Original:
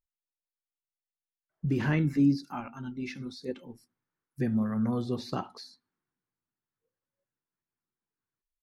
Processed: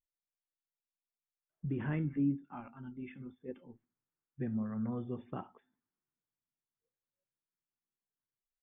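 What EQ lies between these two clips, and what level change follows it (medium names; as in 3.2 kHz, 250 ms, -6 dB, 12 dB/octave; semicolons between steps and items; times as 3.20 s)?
brick-wall FIR low-pass 3.6 kHz; distance through air 410 m; -7.5 dB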